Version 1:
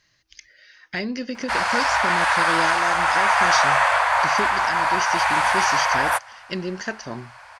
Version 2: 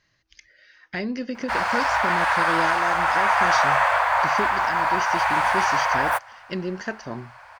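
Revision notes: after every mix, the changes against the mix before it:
background: remove brick-wall FIR low-pass 12000 Hz; master: add high shelf 3000 Hz -9 dB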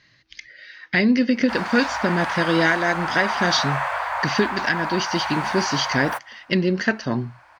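speech: add graphic EQ 125/250/500/1000/2000/4000 Hz +9/+9/+4/+3/+9/+11 dB; background -5.5 dB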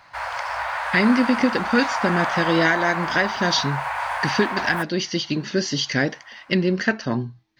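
background: entry -1.35 s

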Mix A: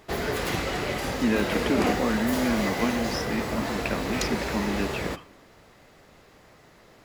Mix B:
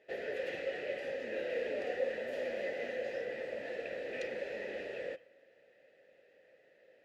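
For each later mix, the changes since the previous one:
speech -8.0 dB; master: add vowel filter e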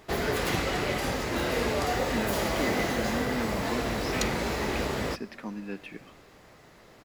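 speech: entry +0.90 s; master: remove vowel filter e

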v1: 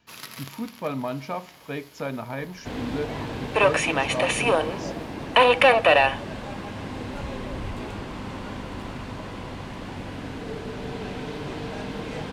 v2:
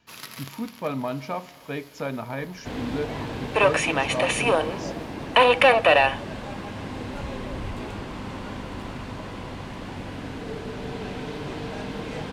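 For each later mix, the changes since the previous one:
speech: send +6.5 dB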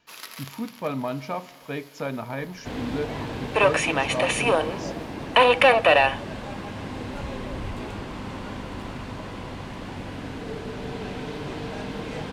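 first sound: add HPF 380 Hz 12 dB/oct

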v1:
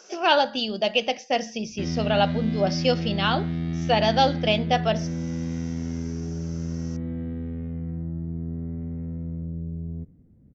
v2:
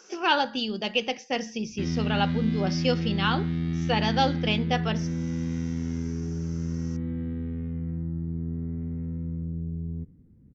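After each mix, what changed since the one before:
speech: add bell 4200 Hz -4 dB 1.5 oct; master: add bell 640 Hz -14.5 dB 0.36 oct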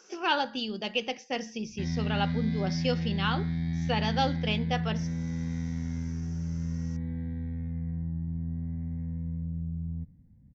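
speech -4.0 dB; background: add fixed phaser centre 1900 Hz, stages 8

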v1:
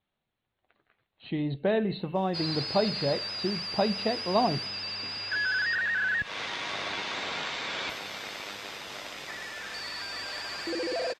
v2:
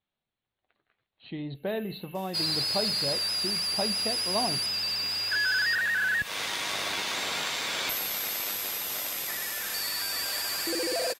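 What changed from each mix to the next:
speech -6.0 dB; master: remove air absorption 150 m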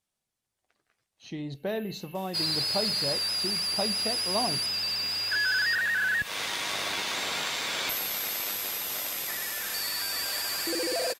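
speech: remove steep low-pass 4200 Hz 96 dB/oct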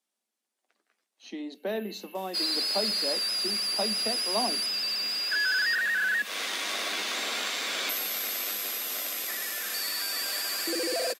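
second sound: add notch 900 Hz, Q 6.2; master: add steep high-pass 200 Hz 96 dB/oct

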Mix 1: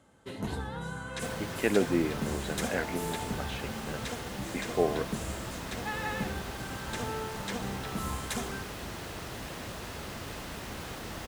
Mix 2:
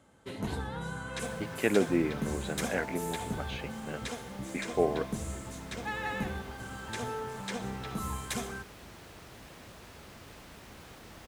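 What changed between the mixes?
second sound -10.0 dB; master: remove notch 2300 Hz, Q 30

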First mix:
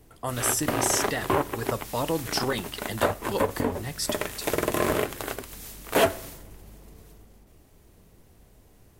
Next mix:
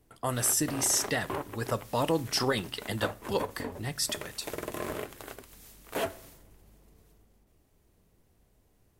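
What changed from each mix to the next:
background -11.0 dB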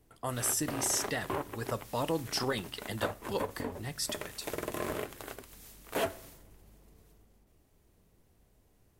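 speech -4.5 dB

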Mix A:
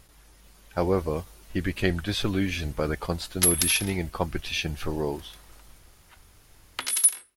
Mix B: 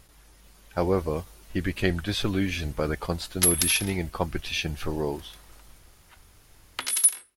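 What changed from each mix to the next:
none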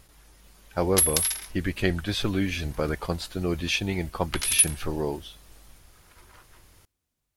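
background: entry -2.45 s

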